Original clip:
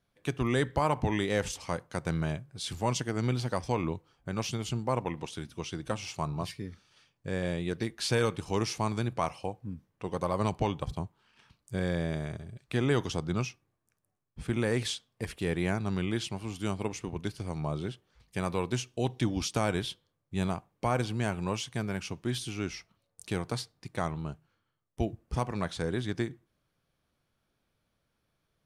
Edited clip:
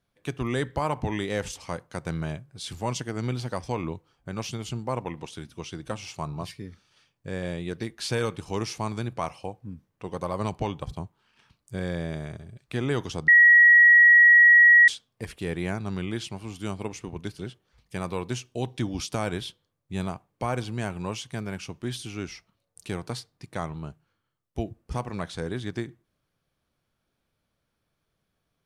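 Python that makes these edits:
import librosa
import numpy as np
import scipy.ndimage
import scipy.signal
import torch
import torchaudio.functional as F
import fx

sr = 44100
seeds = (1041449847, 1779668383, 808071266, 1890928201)

y = fx.edit(x, sr, fx.bleep(start_s=13.28, length_s=1.6, hz=1910.0, db=-11.0),
    fx.cut(start_s=17.39, length_s=0.42), tone=tone)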